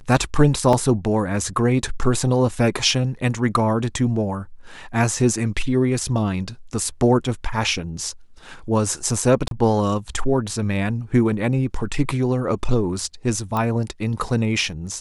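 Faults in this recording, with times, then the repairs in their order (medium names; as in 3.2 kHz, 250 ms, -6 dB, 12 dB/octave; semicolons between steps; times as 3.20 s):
0.73 s: dropout 2.4 ms
9.48–9.51 s: dropout 32 ms
13.57 s: pop -11 dBFS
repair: de-click; interpolate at 0.73 s, 2.4 ms; interpolate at 9.48 s, 32 ms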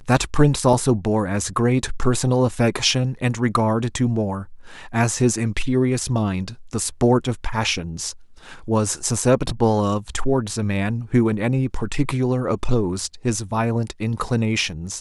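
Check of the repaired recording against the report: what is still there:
13.57 s: pop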